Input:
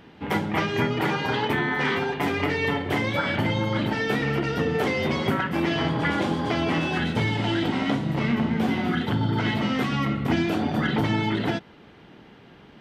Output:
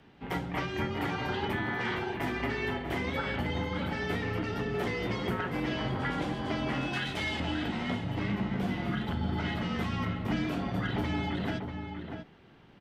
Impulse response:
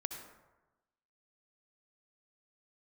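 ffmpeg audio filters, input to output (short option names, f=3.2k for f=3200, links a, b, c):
-filter_complex "[0:a]afreqshift=-30,asettb=1/sr,asplit=3[a][b][c];[a]atrim=end=6.934[d];[b]atrim=start=6.93:end=7.4,asetpts=PTS-STARTPTS,afade=t=in:d=0.004:c=qsin,afade=t=out:st=0.466:d=0.004:c=qsin,tiltshelf=f=970:g=-7.5[e];[c]atrim=start=7.396[f];[d][e]acrossfade=d=0.004:c1=hsin:c2=qsin[g];[g][f]acrossfade=d=0.004:c1=qsin:c2=hsin,asplit=2[h][i];[i]adelay=641.4,volume=-6dB,highshelf=f=4k:g=-14.4[j];[h][j]amix=inputs=2:normalize=0,volume=-8.5dB"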